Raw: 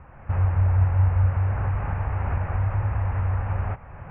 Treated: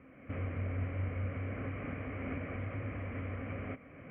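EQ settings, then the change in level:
formant filter i
flat-topped bell 740 Hz +11.5 dB
+8.5 dB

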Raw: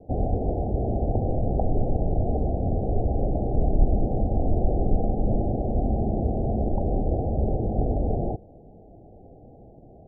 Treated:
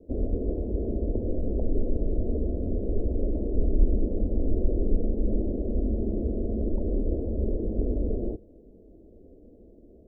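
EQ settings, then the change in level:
phaser with its sweep stopped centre 320 Hz, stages 4
0.0 dB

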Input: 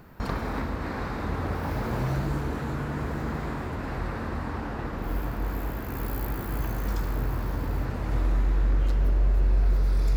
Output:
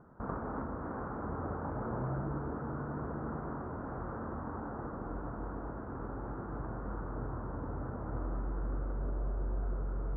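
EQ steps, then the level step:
elliptic low-pass filter 1,400 Hz, stop band 80 dB
low-shelf EQ 65 Hz −11 dB
−5.5 dB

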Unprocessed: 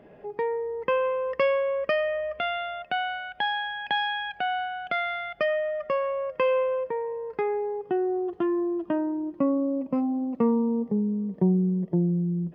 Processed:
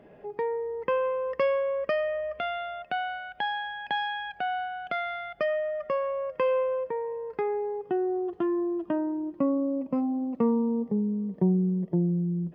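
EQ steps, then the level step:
dynamic equaliser 2,700 Hz, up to −5 dB, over −43 dBFS, Q 1.1
−1.5 dB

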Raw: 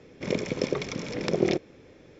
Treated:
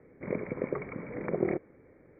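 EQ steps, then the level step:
Chebyshev low-pass filter 2,300 Hz, order 8
dynamic equaliser 1,100 Hz, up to +3 dB, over −42 dBFS, Q 1.2
high-frequency loss of the air 82 metres
−5.0 dB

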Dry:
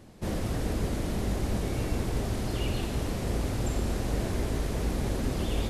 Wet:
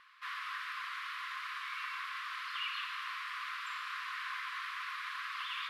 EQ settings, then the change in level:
linear-phase brick-wall high-pass 1,000 Hz
high-frequency loss of the air 390 metres
high-shelf EQ 11,000 Hz +7 dB
+8.5 dB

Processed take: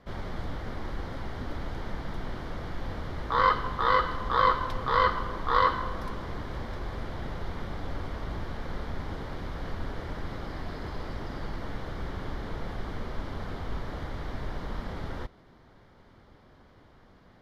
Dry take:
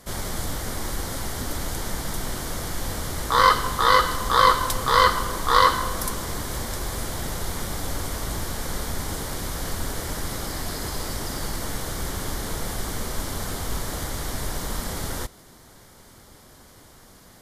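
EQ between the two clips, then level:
high-frequency loss of the air 320 metres
−4.5 dB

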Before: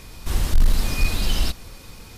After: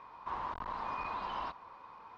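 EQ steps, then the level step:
resonant band-pass 1,000 Hz, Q 7.6
high-frequency loss of the air 180 metres
+9.5 dB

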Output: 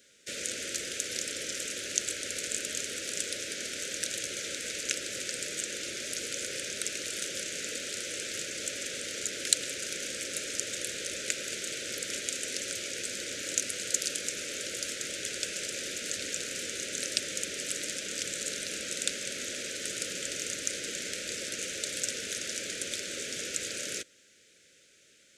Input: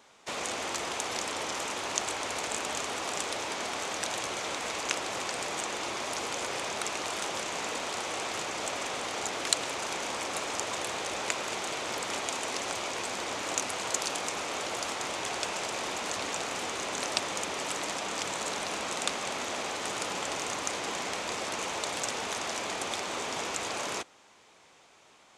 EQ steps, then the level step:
elliptic band-stop filter 560–1,500 Hz, stop band 70 dB
high-shelf EQ 5,000 Hz +9 dB
notch filter 1,100 Hz, Q 21
−3.0 dB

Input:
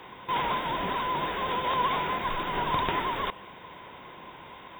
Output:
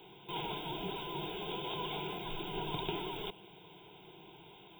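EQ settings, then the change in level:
low-shelf EQ 190 Hz −5.5 dB
phaser with its sweep stopped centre 370 Hz, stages 8
phaser with its sweep stopped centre 2,700 Hz, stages 4
0.0 dB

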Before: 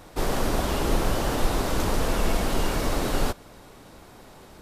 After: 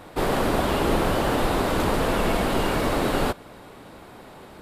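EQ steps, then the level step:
low-shelf EQ 66 Hz −11.5 dB
parametric band 5,900 Hz −8 dB 0.66 octaves
high-shelf EQ 7,700 Hz −7 dB
+5.0 dB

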